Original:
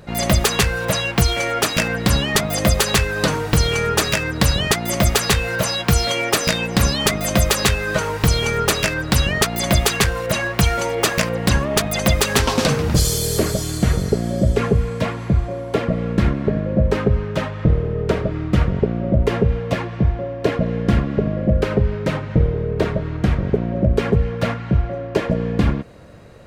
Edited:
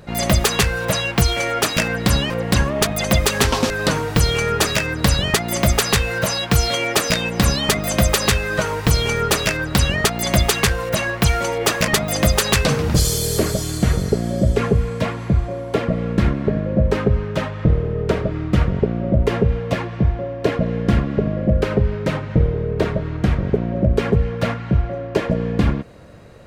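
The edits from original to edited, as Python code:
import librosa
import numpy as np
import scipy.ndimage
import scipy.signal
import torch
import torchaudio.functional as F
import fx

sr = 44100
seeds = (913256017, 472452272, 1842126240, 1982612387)

y = fx.edit(x, sr, fx.swap(start_s=2.3, length_s=0.77, other_s=11.25, other_length_s=1.4), tone=tone)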